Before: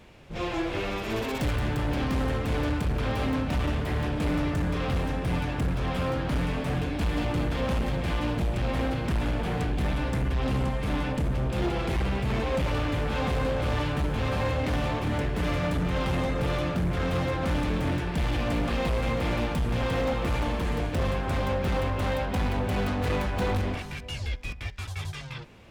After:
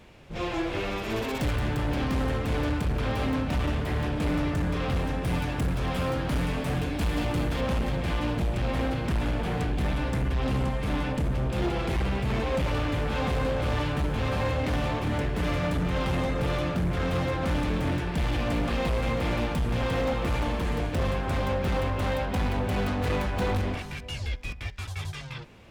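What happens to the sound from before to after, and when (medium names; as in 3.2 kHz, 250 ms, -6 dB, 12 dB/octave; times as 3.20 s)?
5.23–7.61 s: treble shelf 6.8 kHz +6.5 dB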